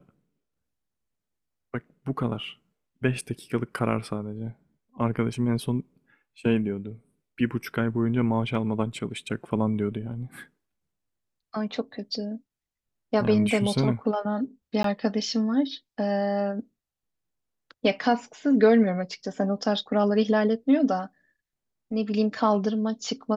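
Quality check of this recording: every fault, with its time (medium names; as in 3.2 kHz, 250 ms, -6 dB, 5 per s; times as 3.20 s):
14.83–14.84 s: dropout 13 ms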